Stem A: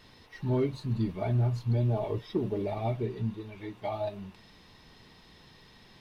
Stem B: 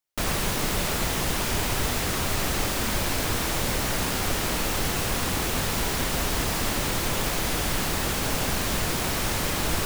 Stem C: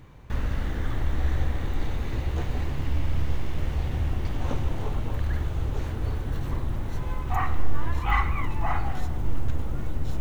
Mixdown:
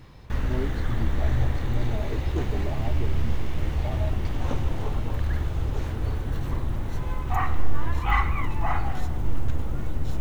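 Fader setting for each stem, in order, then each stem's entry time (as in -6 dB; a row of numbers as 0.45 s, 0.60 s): -4.5 dB, mute, +1.0 dB; 0.00 s, mute, 0.00 s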